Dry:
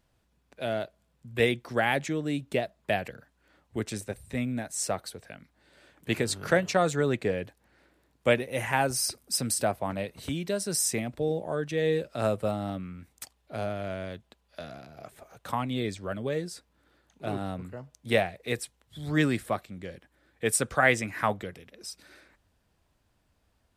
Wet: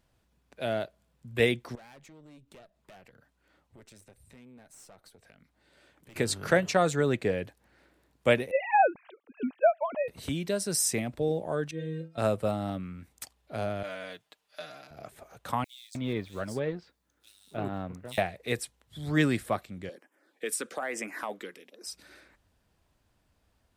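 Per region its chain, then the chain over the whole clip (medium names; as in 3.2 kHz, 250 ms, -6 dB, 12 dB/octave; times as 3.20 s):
1.75–6.16 s: valve stage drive 30 dB, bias 0.65 + band-stop 1.7 kHz, Q 28 + compression 3:1, threshold -56 dBFS
8.51–10.08 s: formants replaced by sine waves + dynamic bell 880 Hz, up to +5 dB, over -36 dBFS, Q 2.2
11.71–12.18 s: treble shelf 4.5 kHz -7 dB + inharmonic resonator 160 Hz, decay 0.29 s, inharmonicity 0.008
13.83–14.91 s: high-pass 920 Hz 6 dB/octave + comb 6.6 ms, depth 94%
15.64–18.18 s: companding laws mixed up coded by A + bands offset in time highs, lows 310 ms, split 3.8 kHz
19.89–21.87 s: high-pass 260 Hz 24 dB/octave + compression, threshold -27 dBFS + LFO notch sine 1.1 Hz 630–4200 Hz
whole clip: none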